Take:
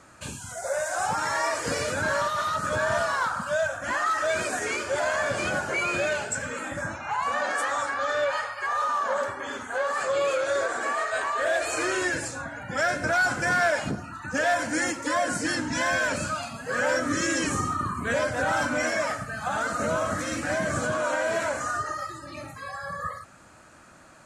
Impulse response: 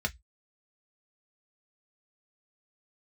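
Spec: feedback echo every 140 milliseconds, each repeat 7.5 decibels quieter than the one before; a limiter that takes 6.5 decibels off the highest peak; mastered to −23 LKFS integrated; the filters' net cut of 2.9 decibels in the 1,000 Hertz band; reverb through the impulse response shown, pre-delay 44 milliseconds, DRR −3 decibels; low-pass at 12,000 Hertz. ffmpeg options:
-filter_complex "[0:a]lowpass=12000,equalizer=frequency=1000:width_type=o:gain=-4,alimiter=limit=-22.5dB:level=0:latency=1,aecho=1:1:140|280|420|560|700:0.422|0.177|0.0744|0.0312|0.0131,asplit=2[link_01][link_02];[1:a]atrim=start_sample=2205,adelay=44[link_03];[link_02][link_03]afir=irnorm=-1:irlink=0,volume=-3dB[link_04];[link_01][link_04]amix=inputs=2:normalize=0,volume=2.5dB"

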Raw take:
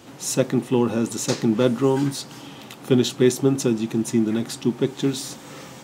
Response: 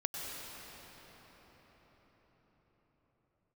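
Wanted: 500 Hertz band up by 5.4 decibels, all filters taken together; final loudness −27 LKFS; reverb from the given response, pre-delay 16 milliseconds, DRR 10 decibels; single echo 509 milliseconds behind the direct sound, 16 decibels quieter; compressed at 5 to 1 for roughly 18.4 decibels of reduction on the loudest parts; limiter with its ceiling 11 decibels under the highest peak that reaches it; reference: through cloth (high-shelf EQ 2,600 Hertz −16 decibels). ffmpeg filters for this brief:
-filter_complex "[0:a]equalizer=frequency=500:width_type=o:gain=8,acompressor=threshold=-30dB:ratio=5,alimiter=level_in=3dB:limit=-24dB:level=0:latency=1,volume=-3dB,aecho=1:1:509:0.158,asplit=2[link_01][link_02];[1:a]atrim=start_sample=2205,adelay=16[link_03];[link_02][link_03]afir=irnorm=-1:irlink=0,volume=-13.5dB[link_04];[link_01][link_04]amix=inputs=2:normalize=0,highshelf=frequency=2600:gain=-16,volume=11dB"

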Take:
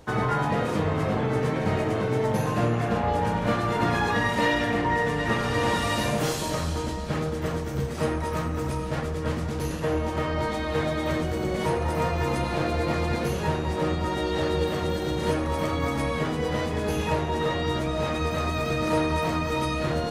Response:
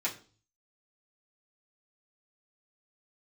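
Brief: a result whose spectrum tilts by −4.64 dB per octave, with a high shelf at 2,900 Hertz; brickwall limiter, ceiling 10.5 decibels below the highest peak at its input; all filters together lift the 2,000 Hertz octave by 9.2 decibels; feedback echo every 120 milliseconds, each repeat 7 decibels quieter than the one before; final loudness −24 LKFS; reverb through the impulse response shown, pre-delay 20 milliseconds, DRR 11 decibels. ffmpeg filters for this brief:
-filter_complex "[0:a]equalizer=frequency=2000:width_type=o:gain=9,highshelf=frequency=2900:gain=5,alimiter=limit=-17dB:level=0:latency=1,aecho=1:1:120|240|360|480|600:0.447|0.201|0.0905|0.0407|0.0183,asplit=2[link_01][link_02];[1:a]atrim=start_sample=2205,adelay=20[link_03];[link_02][link_03]afir=irnorm=-1:irlink=0,volume=-16.5dB[link_04];[link_01][link_04]amix=inputs=2:normalize=0,volume=0.5dB"

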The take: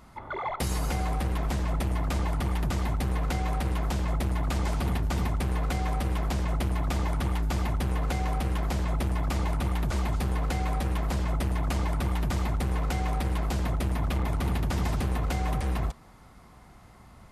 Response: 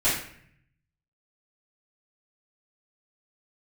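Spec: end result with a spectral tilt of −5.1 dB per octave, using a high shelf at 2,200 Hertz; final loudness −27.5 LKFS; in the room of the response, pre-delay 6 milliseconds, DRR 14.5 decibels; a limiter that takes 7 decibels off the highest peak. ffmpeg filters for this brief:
-filter_complex "[0:a]highshelf=frequency=2200:gain=6.5,alimiter=limit=-22.5dB:level=0:latency=1,asplit=2[link_01][link_02];[1:a]atrim=start_sample=2205,adelay=6[link_03];[link_02][link_03]afir=irnorm=-1:irlink=0,volume=-28dB[link_04];[link_01][link_04]amix=inputs=2:normalize=0,volume=4dB"

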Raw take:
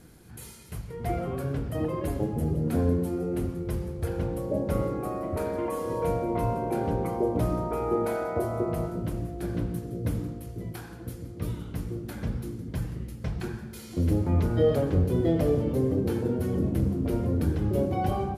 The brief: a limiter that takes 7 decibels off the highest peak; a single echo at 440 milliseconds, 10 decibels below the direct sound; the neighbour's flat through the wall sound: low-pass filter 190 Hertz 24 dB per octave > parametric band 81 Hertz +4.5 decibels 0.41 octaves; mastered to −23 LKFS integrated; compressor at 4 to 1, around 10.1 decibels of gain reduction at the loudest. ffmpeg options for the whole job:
ffmpeg -i in.wav -af "acompressor=threshold=-31dB:ratio=4,alimiter=level_in=3.5dB:limit=-24dB:level=0:latency=1,volume=-3.5dB,lowpass=frequency=190:width=0.5412,lowpass=frequency=190:width=1.3066,equalizer=frequency=81:width_type=o:width=0.41:gain=4.5,aecho=1:1:440:0.316,volume=16dB" out.wav

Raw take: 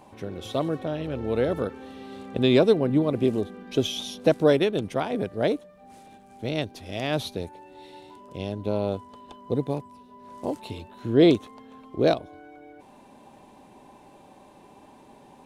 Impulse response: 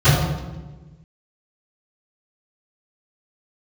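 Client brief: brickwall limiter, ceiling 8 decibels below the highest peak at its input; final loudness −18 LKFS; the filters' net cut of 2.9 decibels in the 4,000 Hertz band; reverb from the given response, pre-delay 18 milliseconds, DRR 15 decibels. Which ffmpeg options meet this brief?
-filter_complex "[0:a]equalizer=frequency=4000:width_type=o:gain=-3.5,alimiter=limit=-14dB:level=0:latency=1,asplit=2[link_01][link_02];[1:a]atrim=start_sample=2205,adelay=18[link_03];[link_02][link_03]afir=irnorm=-1:irlink=0,volume=-39dB[link_04];[link_01][link_04]amix=inputs=2:normalize=0,volume=9dB"

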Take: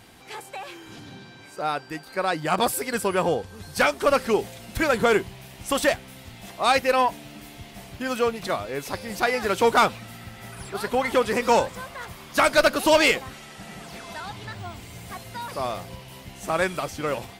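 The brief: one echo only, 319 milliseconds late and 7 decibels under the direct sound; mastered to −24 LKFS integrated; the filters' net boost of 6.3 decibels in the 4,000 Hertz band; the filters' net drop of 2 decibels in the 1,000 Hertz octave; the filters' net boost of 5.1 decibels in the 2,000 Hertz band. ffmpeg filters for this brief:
ffmpeg -i in.wav -af "equalizer=frequency=1000:width_type=o:gain=-5,equalizer=frequency=2000:width_type=o:gain=6.5,equalizer=frequency=4000:width_type=o:gain=6,aecho=1:1:319:0.447,volume=-2.5dB" out.wav

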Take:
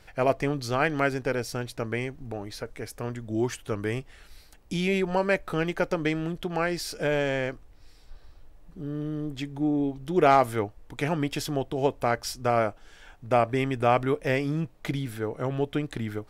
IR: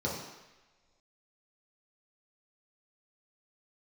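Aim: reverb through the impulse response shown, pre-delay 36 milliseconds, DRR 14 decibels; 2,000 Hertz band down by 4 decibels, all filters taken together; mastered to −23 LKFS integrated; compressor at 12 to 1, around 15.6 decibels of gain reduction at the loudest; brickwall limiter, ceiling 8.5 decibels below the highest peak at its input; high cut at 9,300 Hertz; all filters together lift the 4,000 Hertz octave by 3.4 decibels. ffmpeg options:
-filter_complex "[0:a]lowpass=9300,equalizer=frequency=2000:width_type=o:gain=-7,equalizer=frequency=4000:width_type=o:gain=7,acompressor=threshold=-32dB:ratio=12,alimiter=level_in=4dB:limit=-24dB:level=0:latency=1,volume=-4dB,asplit=2[link_01][link_02];[1:a]atrim=start_sample=2205,adelay=36[link_03];[link_02][link_03]afir=irnorm=-1:irlink=0,volume=-21dB[link_04];[link_01][link_04]amix=inputs=2:normalize=0,volume=15dB"

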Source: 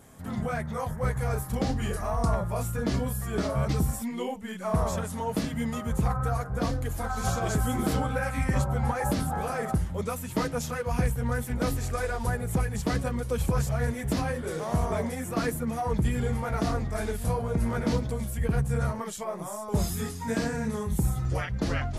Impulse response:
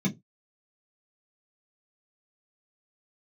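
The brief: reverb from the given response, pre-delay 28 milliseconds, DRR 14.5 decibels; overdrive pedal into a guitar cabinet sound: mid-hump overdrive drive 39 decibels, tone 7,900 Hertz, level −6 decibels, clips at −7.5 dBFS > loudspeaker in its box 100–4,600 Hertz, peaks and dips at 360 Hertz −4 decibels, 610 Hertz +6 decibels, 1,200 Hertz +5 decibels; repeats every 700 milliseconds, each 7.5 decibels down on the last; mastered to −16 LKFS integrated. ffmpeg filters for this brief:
-filter_complex "[0:a]aecho=1:1:700|1400|2100|2800|3500:0.422|0.177|0.0744|0.0312|0.0131,asplit=2[link_01][link_02];[1:a]atrim=start_sample=2205,adelay=28[link_03];[link_02][link_03]afir=irnorm=-1:irlink=0,volume=-20.5dB[link_04];[link_01][link_04]amix=inputs=2:normalize=0,asplit=2[link_05][link_06];[link_06]highpass=frequency=720:poles=1,volume=39dB,asoftclip=type=tanh:threshold=-7.5dB[link_07];[link_05][link_07]amix=inputs=2:normalize=0,lowpass=frequency=7900:poles=1,volume=-6dB,highpass=100,equalizer=frequency=360:width_type=q:width=4:gain=-4,equalizer=frequency=610:width_type=q:width=4:gain=6,equalizer=frequency=1200:width_type=q:width=4:gain=5,lowpass=frequency=4600:width=0.5412,lowpass=frequency=4600:width=1.3066,volume=-2.5dB"

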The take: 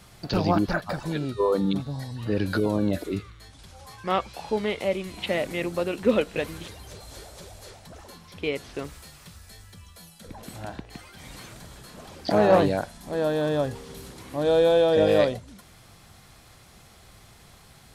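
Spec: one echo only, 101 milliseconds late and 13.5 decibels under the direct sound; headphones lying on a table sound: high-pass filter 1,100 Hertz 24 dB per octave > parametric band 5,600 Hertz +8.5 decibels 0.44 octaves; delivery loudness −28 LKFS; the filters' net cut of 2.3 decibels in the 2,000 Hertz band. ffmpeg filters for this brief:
ffmpeg -i in.wav -af "highpass=frequency=1100:width=0.5412,highpass=frequency=1100:width=1.3066,equalizer=frequency=2000:width_type=o:gain=-3,equalizer=frequency=5600:width_type=o:width=0.44:gain=8.5,aecho=1:1:101:0.211,volume=10dB" out.wav

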